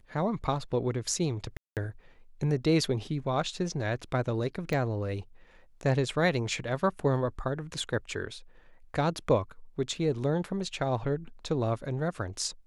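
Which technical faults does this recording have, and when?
1.57–1.77 s: dropout 198 ms
4.73 s: pop -19 dBFS

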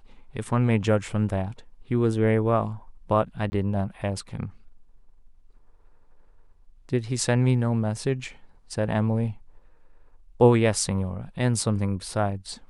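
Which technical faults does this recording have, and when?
3.50–3.52 s: dropout 20 ms

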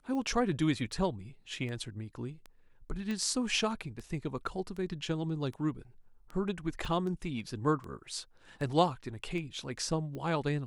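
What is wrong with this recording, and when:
tick 78 rpm -30 dBFS
3.11 s: pop -24 dBFS
6.85 s: dropout 3.3 ms

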